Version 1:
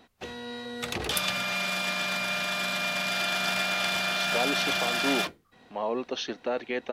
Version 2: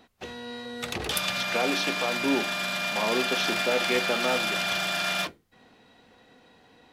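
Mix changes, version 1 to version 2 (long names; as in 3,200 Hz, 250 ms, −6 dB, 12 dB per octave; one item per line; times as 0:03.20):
speech: entry −2.80 s
reverb: on, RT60 0.55 s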